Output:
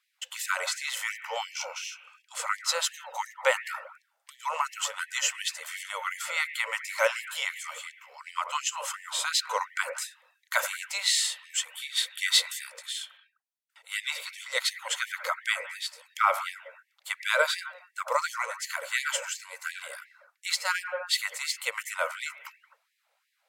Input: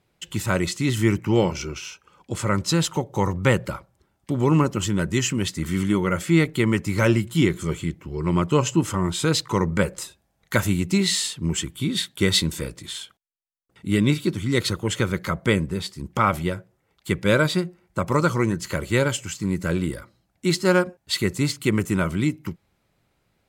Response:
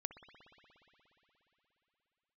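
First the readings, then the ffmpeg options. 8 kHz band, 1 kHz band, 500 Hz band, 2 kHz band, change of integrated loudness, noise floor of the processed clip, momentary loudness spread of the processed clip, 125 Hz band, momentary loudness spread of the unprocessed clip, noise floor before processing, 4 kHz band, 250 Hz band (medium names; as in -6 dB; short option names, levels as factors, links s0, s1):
-1.5 dB, -2.5 dB, -11.5 dB, -1.0 dB, -7.0 dB, -76 dBFS, 13 LU, under -40 dB, 11 LU, -70 dBFS, -1.5 dB, under -40 dB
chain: -filter_complex "[1:a]atrim=start_sample=2205,afade=t=out:st=0.25:d=0.01,atrim=end_sample=11466,asetrate=32193,aresample=44100[s0];[0:a][s0]afir=irnorm=-1:irlink=0,afftfilt=real='re*gte(b*sr/1024,460*pow(1700/460,0.5+0.5*sin(2*PI*2.8*pts/sr)))':imag='im*gte(b*sr/1024,460*pow(1700/460,0.5+0.5*sin(2*PI*2.8*pts/sr)))':win_size=1024:overlap=0.75,volume=1.12"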